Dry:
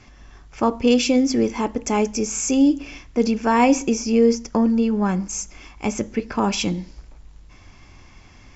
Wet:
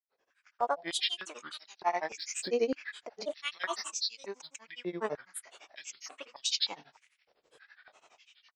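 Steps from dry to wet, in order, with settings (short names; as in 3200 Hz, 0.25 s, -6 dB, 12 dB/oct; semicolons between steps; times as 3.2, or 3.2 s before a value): opening faded in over 1.28 s; grains, grains 12/s, pitch spread up and down by 7 st; stepped high-pass 3.3 Hz 480–4000 Hz; gain -8.5 dB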